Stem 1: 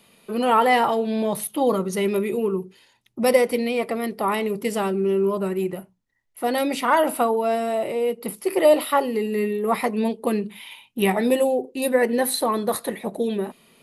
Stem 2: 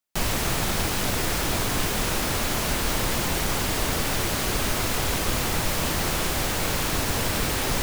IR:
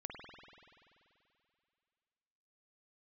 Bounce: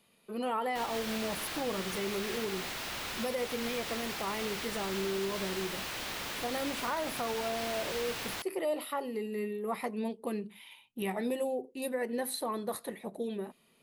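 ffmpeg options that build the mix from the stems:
-filter_complex "[0:a]volume=-12dB[a];[1:a]aeval=exprs='(mod(23.7*val(0)+1,2)-1)/23.7':c=same,acrossover=split=4500[b][c];[c]acompressor=threshold=-47dB:ratio=4:attack=1:release=60[d];[b][d]amix=inputs=2:normalize=0,adelay=600,volume=0dB[e];[a][e]amix=inputs=2:normalize=0,alimiter=level_in=0.5dB:limit=-24dB:level=0:latency=1:release=108,volume=-0.5dB"

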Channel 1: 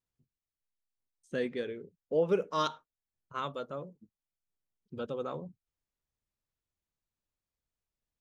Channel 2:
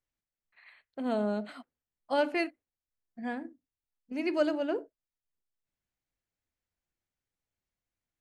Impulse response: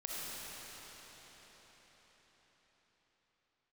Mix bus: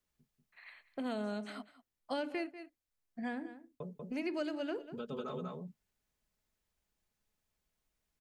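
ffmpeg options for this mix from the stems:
-filter_complex "[0:a]aecho=1:1:4.7:0.72,acompressor=threshold=-36dB:ratio=6,volume=1.5dB,asplit=3[a][b][c];[a]atrim=end=1.31,asetpts=PTS-STARTPTS,afade=t=out:st=1.306:d=0.004:c=hsin[d];[b]atrim=start=1.31:end=3.8,asetpts=PTS-STARTPTS,volume=0[e];[c]atrim=start=3.8,asetpts=PTS-STARTPTS,afade=t=in:d=0.004:c=hsin[f];[d][e][f]concat=n=3:v=0:a=1,asplit=2[g][h];[h]volume=-4.5dB[i];[1:a]volume=2dB,asplit=3[j][k][l];[k]volume=-18.5dB[m];[l]apad=whole_len=362167[n];[g][n]sidechaincompress=threshold=-31dB:ratio=3:attack=16:release=996[o];[i][m]amix=inputs=2:normalize=0,aecho=0:1:191:1[p];[o][j][p]amix=inputs=3:normalize=0,acrossover=split=460|1400[q][r][s];[q]acompressor=threshold=-39dB:ratio=4[t];[r]acompressor=threshold=-46dB:ratio=4[u];[s]acompressor=threshold=-46dB:ratio=4[v];[t][u][v]amix=inputs=3:normalize=0"

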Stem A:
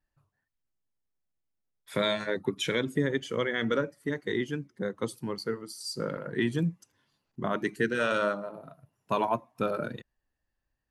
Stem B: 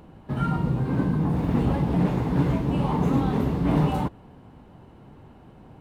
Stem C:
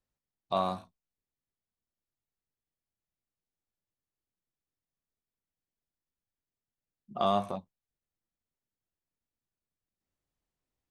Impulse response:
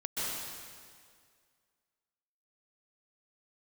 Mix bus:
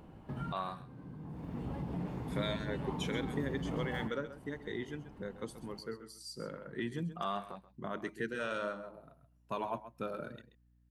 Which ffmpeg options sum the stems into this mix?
-filter_complex "[0:a]aeval=exprs='val(0)+0.00126*(sin(2*PI*60*n/s)+sin(2*PI*2*60*n/s)/2+sin(2*PI*3*60*n/s)/3+sin(2*PI*4*60*n/s)/4+sin(2*PI*5*60*n/s)/5)':c=same,adelay=400,volume=-10dB,asplit=2[a][b];[b]volume=-13dB[c];[1:a]acompressor=threshold=-38dB:ratio=2,bandreject=f=3.9k:w=20,volume=-6dB,asplit=2[d][e];[e]volume=-16.5dB[f];[2:a]equalizer=f=100:t=o:w=0.67:g=-12,equalizer=f=250:t=o:w=0.67:g=-5,equalizer=f=630:t=o:w=0.67:g=-6,equalizer=f=1.6k:t=o:w=0.67:g=9,equalizer=f=6.3k:t=o:w=0.67:g=-10,volume=-7.5dB,asplit=3[g][h][i];[h]volume=-17.5dB[j];[i]apad=whole_len=256047[k];[d][k]sidechaincompress=threshold=-52dB:ratio=5:attack=7.8:release=753[l];[c][f][j]amix=inputs=3:normalize=0,aecho=0:1:132:1[m];[a][l][g][m]amix=inputs=4:normalize=0"

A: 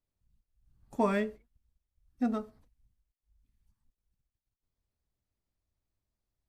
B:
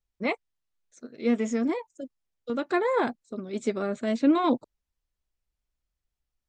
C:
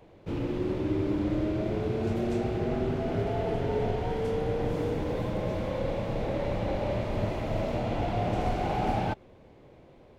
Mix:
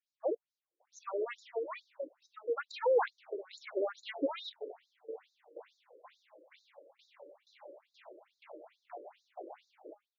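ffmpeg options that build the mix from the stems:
-filter_complex "[0:a]equalizer=f=160:t=o:w=0.33:g=12,equalizer=f=500:t=o:w=0.33:g=9,equalizer=f=2k:t=o:w=0.33:g=-4,equalizer=f=3.15k:t=o:w=0.33:g=-7,volume=-3.5dB,asplit=2[a][b];[1:a]asoftclip=type=tanh:threshold=-16.5dB,volume=1dB[c];[2:a]bandreject=f=205:t=h:w=4,bandreject=f=410:t=h:w=4,bandreject=f=615:t=h:w=4,bandreject=f=820:t=h:w=4,bandreject=f=1.025k:t=h:w=4,bandreject=f=1.23k:t=h:w=4,bandreject=f=1.435k:t=h:w=4,bandreject=f=1.64k:t=h:w=4,bandreject=f=1.845k:t=h:w=4,bandreject=f=2.05k:t=h:w=4,bandreject=f=2.255k:t=h:w=4,bandreject=f=2.46k:t=h:w=4,bandreject=f=2.665k:t=h:w=4,bandreject=f=2.87k:t=h:w=4,bandreject=f=3.075k:t=h:w=4,bandreject=f=3.28k:t=h:w=4,bandreject=f=3.485k:t=h:w=4,bandreject=f=3.69k:t=h:w=4,bandreject=f=3.895k:t=h:w=4,bandreject=f=4.1k:t=h:w=4,bandreject=f=4.305k:t=h:w=4,bandreject=f=4.51k:t=h:w=4,bandreject=f=4.715k:t=h:w=4,bandreject=f=4.92k:t=h:w=4,bandreject=f=5.125k:t=h:w=4,bandreject=f=5.33k:t=h:w=4,bandreject=f=5.535k:t=h:w=4,aeval=exprs='val(0)*pow(10,-20*if(lt(mod(2.1*n/s,1),2*abs(2.1)/1000),1-mod(2.1*n/s,1)/(2*abs(2.1)/1000),(mod(2.1*n/s,1)-2*abs(2.1)/1000)/(1-2*abs(2.1)/1000))/20)':c=same,adelay=800,volume=-8.5dB[d];[b]apad=whole_len=484394[e];[d][e]sidechaincompress=threshold=-43dB:ratio=8:attack=16:release=429[f];[a][c][f]amix=inputs=3:normalize=0,afftfilt=real='re*between(b*sr/1024,410*pow(5200/410,0.5+0.5*sin(2*PI*2.3*pts/sr))/1.41,410*pow(5200/410,0.5+0.5*sin(2*PI*2.3*pts/sr))*1.41)':imag='im*between(b*sr/1024,410*pow(5200/410,0.5+0.5*sin(2*PI*2.3*pts/sr))/1.41,410*pow(5200/410,0.5+0.5*sin(2*PI*2.3*pts/sr))*1.41)':win_size=1024:overlap=0.75"

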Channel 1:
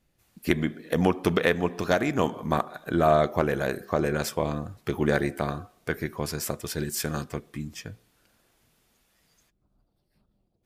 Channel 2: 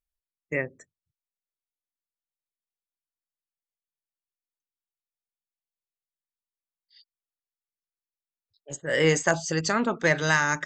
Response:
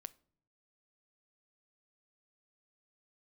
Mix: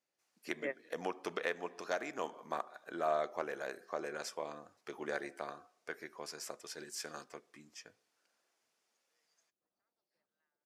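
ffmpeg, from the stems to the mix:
-filter_complex "[0:a]aexciter=amount=4:drive=6.5:freq=5k,volume=-11.5dB,asplit=2[a][b];[1:a]acrossover=split=710[c][d];[c]aeval=exprs='val(0)*(1-0.7/2+0.7/2*cos(2*PI*1.9*n/s))':c=same[e];[d]aeval=exprs='val(0)*(1-0.7/2-0.7/2*cos(2*PI*1.9*n/s))':c=same[f];[e][f]amix=inputs=2:normalize=0,adelay=100,volume=-4.5dB[g];[b]apad=whole_len=474370[h];[g][h]sidechaingate=range=-59dB:threshold=-39dB:ratio=16:detection=peak[i];[a][i]amix=inputs=2:normalize=0,highpass=460,lowpass=3.8k"

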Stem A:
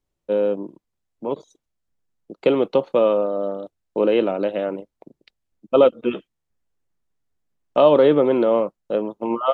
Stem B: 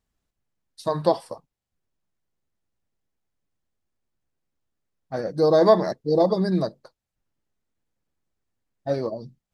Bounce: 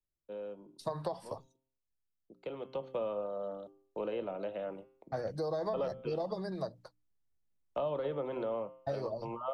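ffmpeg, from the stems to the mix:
-filter_complex "[0:a]bandreject=f=131.6:t=h:w=4,bandreject=f=263.2:t=h:w=4,bandreject=f=394.8:t=h:w=4,bandreject=f=526.4:t=h:w=4,bandreject=f=658:t=h:w=4,bandreject=f=789.6:t=h:w=4,bandreject=f=921.2:t=h:w=4,bandreject=f=1.0528k:t=h:w=4,bandreject=f=1.1844k:t=h:w=4,bandreject=f=1.316k:t=h:w=4,bandreject=f=1.4476k:t=h:w=4,bandreject=f=1.5792k:t=h:w=4,bandreject=f=1.7108k:t=h:w=4,bandreject=f=1.8424k:t=h:w=4,bandreject=f=1.974k:t=h:w=4,bandreject=f=2.1056k:t=h:w=4,bandreject=f=2.2372k:t=h:w=4,bandreject=f=2.3688k:t=h:w=4,bandreject=f=2.5004k:t=h:w=4,bandreject=f=2.632k:t=h:w=4,bandreject=f=2.7636k:t=h:w=4,bandreject=f=2.8952k:t=h:w=4,bandreject=f=3.0268k:t=h:w=4,bandreject=f=3.1584k:t=h:w=4,bandreject=f=3.29k:t=h:w=4,bandreject=f=3.4216k:t=h:w=4,volume=-11.5dB,afade=t=in:st=2.58:d=0.42:silence=0.398107[a];[1:a]agate=range=-33dB:threshold=-44dB:ratio=3:detection=peak,acompressor=threshold=-22dB:ratio=6,volume=-2.5dB[b];[a][b]amix=inputs=2:normalize=0,lowshelf=f=190:g=8,bandreject=f=60:t=h:w=6,bandreject=f=120:t=h:w=6,bandreject=f=180:t=h:w=6,bandreject=f=240:t=h:w=6,bandreject=f=300:t=h:w=6,acrossover=split=150|490|1100[c][d][e][f];[c]acompressor=threshold=-46dB:ratio=4[g];[d]acompressor=threshold=-54dB:ratio=4[h];[e]acompressor=threshold=-34dB:ratio=4[i];[f]acompressor=threshold=-52dB:ratio=4[j];[g][h][i][j]amix=inputs=4:normalize=0"

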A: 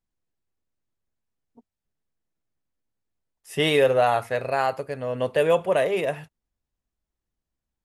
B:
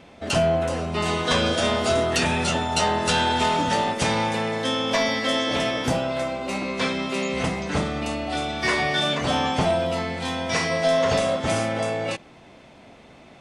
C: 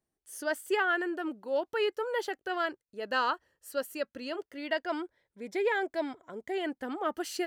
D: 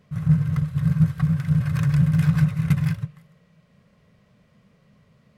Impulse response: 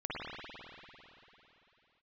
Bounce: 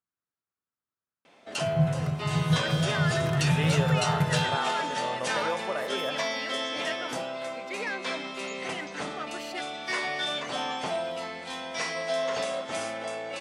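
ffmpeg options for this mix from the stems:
-filter_complex "[0:a]equalizer=f=1.3k:t=o:w=0.77:g=13.5,acompressor=threshold=-18dB:ratio=6,volume=-10dB[a];[1:a]highpass=f=520:p=1,adelay=1250,volume=-6.5dB[b];[2:a]equalizer=f=2.3k:t=o:w=2:g=14.5,asoftclip=type=tanh:threshold=-17.5dB,adelay=2150,volume=-10.5dB[c];[3:a]adelay=1500,volume=-5.5dB[d];[a][b][c][d]amix=inputs=4:normalize=0,highpass=110"

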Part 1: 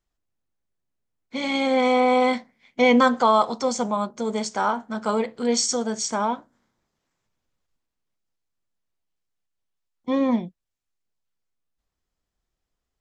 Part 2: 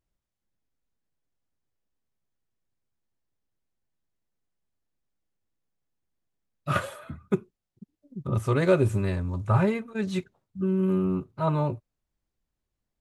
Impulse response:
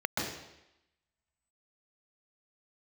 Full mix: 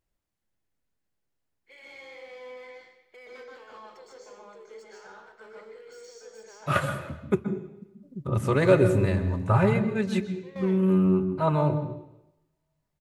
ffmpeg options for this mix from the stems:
-filter_complex "[0:a]firequalizer=gain_entry='entry(140,0);entry(240,-23);entry(370,11);entry(680,-2);entry(1700,12);entry(3000,8)':delay=0.05:min_phase=1,acompressor=threshold=-21dB:ratio=2.5,asoftclip=type=hard:threshold=-21dB,adelay=350,volume=-15.5dB,asplit=2[a][b];[b]volume=-16dB[c];[1:a]volume=0.5dB,asplit=3[d][e][f];[e]volume=-15.5dB[g];[f]apad=whole_len=593305[h];[a][h]sidechaingate=range=-33dB:threshold=-49dB:ratio=16:detection=peak[i];[2:a]atrim=start_sample=2205[j];[c][g]amix=inputs=2:normalize=0[k];[k][j]afir=irnorm=-1:irlink=0[l];[i][d][l]amix=inputs=3:normalize=0"

